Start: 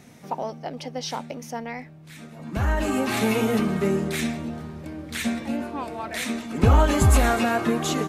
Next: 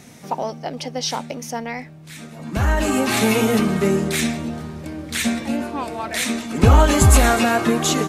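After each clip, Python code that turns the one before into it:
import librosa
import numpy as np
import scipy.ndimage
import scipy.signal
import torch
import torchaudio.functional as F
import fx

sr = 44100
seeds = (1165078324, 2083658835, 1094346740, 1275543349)

y = fx.peak_eq(x, sr, hz=7700.0, db=5.0, octaves=2.2)
y = y * 10.0 ** (4.5 / 20.0)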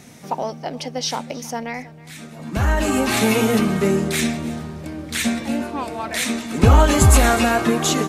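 y = x + 10.0 ** (-20.0 / 20.0) * np.pad(x, (int(318 * sr / 1000.0), 0))[:len(x)]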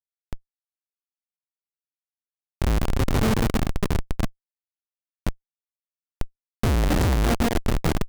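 y = fx.schmitt(x, sr, flips_db=-11.5)
y = fx.buffer_crackle(y, sr, first_s=0.95, period_s=0.27, block=256, kind='zero')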